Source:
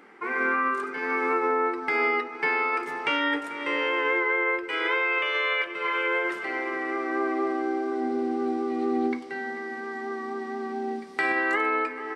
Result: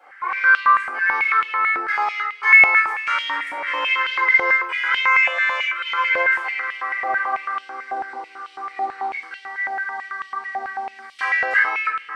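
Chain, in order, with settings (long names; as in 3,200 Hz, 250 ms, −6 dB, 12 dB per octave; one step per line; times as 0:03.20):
soft clipping −17.5 dBFS, distortion −21 dB
convolution reverb, pre-delay 3 ms, DRR −13 dB
high-pass on a step sequencer 9.1 Hz 730–3,000 Hz
level −13 dB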